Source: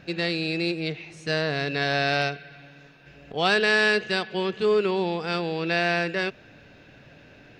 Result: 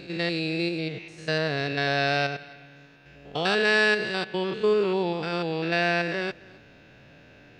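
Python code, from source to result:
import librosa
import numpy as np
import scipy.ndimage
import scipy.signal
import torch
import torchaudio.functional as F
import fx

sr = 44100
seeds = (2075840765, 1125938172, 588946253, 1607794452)

y = fx.spec_steps(x, sr, hold_ms=100)
y = y + 10.0 ** (-23.0 / 20.0) * np.pad(y, (int(265 * sr / 1000.0), 0))[:len(y)]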